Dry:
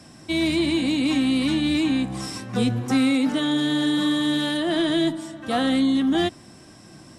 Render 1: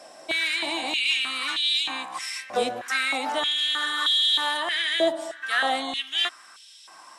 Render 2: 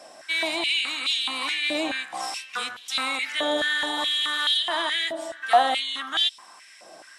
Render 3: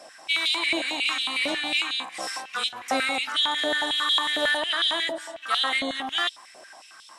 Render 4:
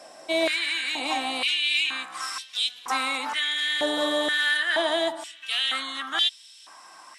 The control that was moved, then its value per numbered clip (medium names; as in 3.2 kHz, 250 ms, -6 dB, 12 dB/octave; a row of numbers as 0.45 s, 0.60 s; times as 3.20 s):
step-sequenced high-pass, rate: 3.2 Hz, 4.7 Hz, 11 Hz, 2.1 Hz